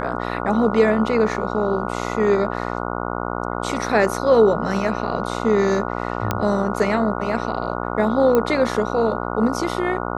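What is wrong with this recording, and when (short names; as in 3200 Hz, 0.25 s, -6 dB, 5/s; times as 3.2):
buzz 60 Hz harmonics 24 -26 dBFS
6.31 pop -6 dBFS
8.35 pop -7 dBFS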